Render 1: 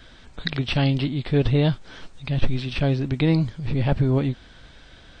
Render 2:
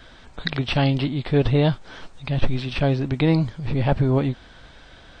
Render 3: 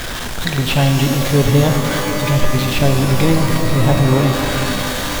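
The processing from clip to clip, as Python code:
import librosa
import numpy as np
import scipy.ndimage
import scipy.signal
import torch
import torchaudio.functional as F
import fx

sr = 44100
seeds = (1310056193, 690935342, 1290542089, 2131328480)

y1 = fx.peak_eq(x, sr, hz=850.0, db=5.0, octaves=1.8)
y2 = y1 + 0.5 * 10.0 ** (-21.0 / 20.0) * np.sign(y1)
y2 = fx.rev_shimmer(y2, sr, seeds[0], rt60_s=3.0, semitones=12, shimmer_db=-2, drr_db=4.0)
y2 = y2 * librosa.db_to_amplitude(1.5)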